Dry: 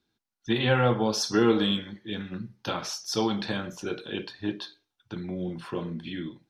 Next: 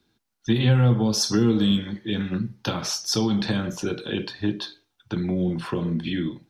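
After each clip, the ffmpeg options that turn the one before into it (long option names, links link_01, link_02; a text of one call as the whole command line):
ffmpeg -i in.wav -filter_complex "[0:a]lowshelf=frequency=380:gain=3,acrossover=split=240|5000[link_01][link_02][link_03];[link_02]acompressor=threshold=-34dB:ratio=10[link_04];[link_01][link_04][link_03]amix=inputs=3:normalize=0,volume=7.5dB" out.wav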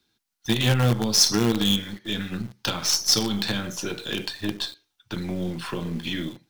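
ffmpeg -i in.wav -filter_complex "[0:a]tiltshelf=frequency=1400:gain=-5,asplit=2[link_01][link_02];[link_02]acrusher=bits=4:dc=4:mix=0:aa=0.000001,volume=-3dB[link_03];[link_01][link_03]amix=inputs=2:normalize=0,volume=-2.5dB" out.wav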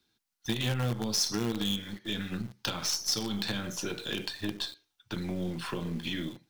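ffmpeg -i in.wav -af "acompressor=threshold=-27dB:ratio=2,volume=-3.5dB" out.wav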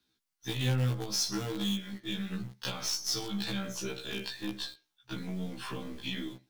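ffmpeg -i in.wav -af "afftfilt=real='re*1.73*eq(mod(b,3),0)':imag='im*1.73*eq(mod(b,3),0)':win_size=2048:overlap=0.75" out.wav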